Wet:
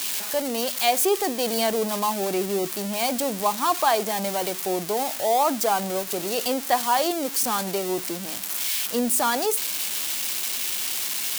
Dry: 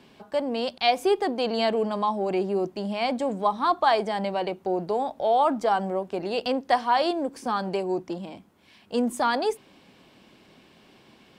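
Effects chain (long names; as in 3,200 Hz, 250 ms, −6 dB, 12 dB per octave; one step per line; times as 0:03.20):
spike at every zero crossing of −16.5 dBFS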